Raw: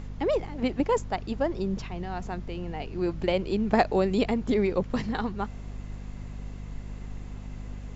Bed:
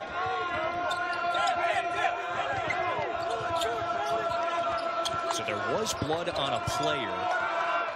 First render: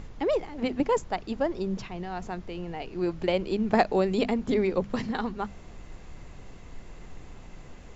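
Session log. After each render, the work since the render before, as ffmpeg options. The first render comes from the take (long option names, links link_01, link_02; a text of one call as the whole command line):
ffmpeg -i in.wav -af "bandreject=frequency=50:width_type=h:width=6,bandreject=frequency=100:width_type=h:width=6,bandreject=frequency=150:width_type=h:width=6,bandreject=frequency=200:width_type=h:width=6,bandreject=frequency=250:width_type=h:width=6" out.wav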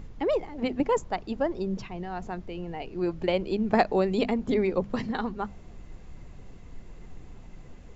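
ffmpeg -i in.wav -af "afftdn=noise_reduction=6:noise_floor=-46" out.wav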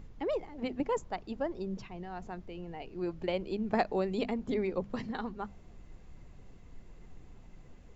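ffmpeg -i in.wav -af "volume=-7dB" out.wav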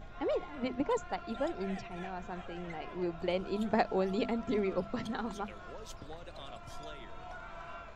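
ffmpeg -i in.wav -i bed.wav -filter_complex "[1:a]volume=-18.5dB[link_01];[0:a][link_01]amix=inputs=2:normalize=0" out.wav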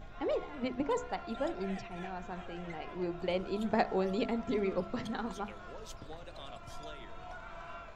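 ffmpeg -i in.wav -af "bandreject=frequency=70.57:width_type=h:width=4,bandreject=frequency=141.14:width_type=h:width=4,bandreject=frequency=211.71:width_type=h:width=4,bandreject=frequency=282.28:width_type=h:width=4,bandreject=frequency=352.85:width_type=h:width=4,bandreject=frequency=423.42:width_type=h:width=4,bandreject=frequency=493.99:width_type=h:width=4,bandreject=frequency=564.56:width_type=h:width=4,bandreject=frequency=635.13:width_type=h:width=4,bandreject=frequency=705.7:width_type=h:width=4,bandreject=frequency=776.27:width_type=h:width=4,bandreject=frequency=846.84:width_type=h:width=4,bandreject=frequency=917.41:width_type=h:width=4,bandreject=frequency=987.98:width_type=h:width=4,bandreject=frequency=1058.55:width_type=h:width=4,bandreject=frequency=1129.12:width_type=h:width=4,bandreject=frequency=1199.69:width_type=h:width=4,bandreject=frequency=1270.26:width_type=h:width=4,bandreject=frequency=1340.83:width_type=h:width=4,bandreject=frequency=1411.4:width_type=h:width=4,bandreject=frequency=1481.97:width_type=h:width=4,bandreject=frequency=1552.54:width_type=h:width=4,bandreject=frequency=1623.11:width_type=h:width=4,bandreject=frequency=1693.68:width_type=h:width=4,bandreject=frequency=1764.25:width_type=h:width=4,bandreject=frequency=1834.82:width_type=h:width=4,bandreject=frequency=1905.39:width_type=h:width=4,bandreject=frequency=1975.96:width_type=h:width=4,bandreject=frequency=2046.53:width_type=h:width=4,bandreject=frequency=2117.1:width_type=h:width=4,bandreject=frequency=2187.67:width_type=h:width=4" out.wav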